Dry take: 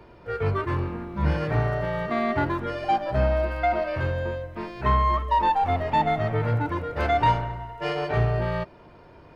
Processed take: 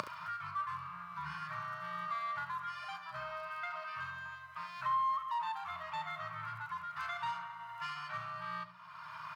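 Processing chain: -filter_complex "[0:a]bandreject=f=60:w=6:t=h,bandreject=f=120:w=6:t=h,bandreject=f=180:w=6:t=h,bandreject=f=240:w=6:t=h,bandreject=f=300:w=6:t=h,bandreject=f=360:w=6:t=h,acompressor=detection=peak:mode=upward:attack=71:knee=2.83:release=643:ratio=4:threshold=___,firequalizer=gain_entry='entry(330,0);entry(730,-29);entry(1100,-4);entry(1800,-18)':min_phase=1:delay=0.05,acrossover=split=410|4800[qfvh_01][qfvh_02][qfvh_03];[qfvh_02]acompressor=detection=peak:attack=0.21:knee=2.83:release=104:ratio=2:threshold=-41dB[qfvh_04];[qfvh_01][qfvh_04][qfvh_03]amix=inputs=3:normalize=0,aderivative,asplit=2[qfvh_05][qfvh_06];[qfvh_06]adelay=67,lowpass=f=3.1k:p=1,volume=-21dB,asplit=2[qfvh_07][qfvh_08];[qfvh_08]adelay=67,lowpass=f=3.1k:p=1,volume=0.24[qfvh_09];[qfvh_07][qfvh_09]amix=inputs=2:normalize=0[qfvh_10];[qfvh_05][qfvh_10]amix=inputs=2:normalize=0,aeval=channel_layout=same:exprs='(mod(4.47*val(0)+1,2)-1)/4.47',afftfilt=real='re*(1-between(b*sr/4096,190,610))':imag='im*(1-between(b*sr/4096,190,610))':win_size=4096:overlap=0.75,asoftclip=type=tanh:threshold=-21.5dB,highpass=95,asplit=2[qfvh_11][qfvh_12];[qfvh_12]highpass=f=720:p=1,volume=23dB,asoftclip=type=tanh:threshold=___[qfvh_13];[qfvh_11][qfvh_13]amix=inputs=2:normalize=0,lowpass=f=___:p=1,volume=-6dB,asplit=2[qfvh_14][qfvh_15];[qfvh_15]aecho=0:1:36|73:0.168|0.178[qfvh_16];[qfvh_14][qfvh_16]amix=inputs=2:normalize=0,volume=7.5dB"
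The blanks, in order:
-24dB, -21.5dB, 1.3k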